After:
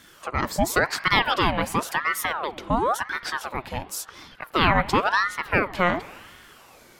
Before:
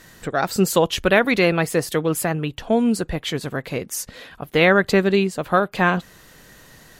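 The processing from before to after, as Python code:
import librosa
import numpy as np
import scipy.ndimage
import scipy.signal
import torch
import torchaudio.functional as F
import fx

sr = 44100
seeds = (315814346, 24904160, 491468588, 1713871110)

y = fx.rev_spring(x, sr, rt60_s=2.1, pass_ms=(40,), chirp_ms=75, drr_db=16.0)
y = fx.ring_lfo(y, sr, carrier_hz=1000.0, swing_pct=65, hz=0.94)
y = y * librosa.db_to_amplitude(-1.5)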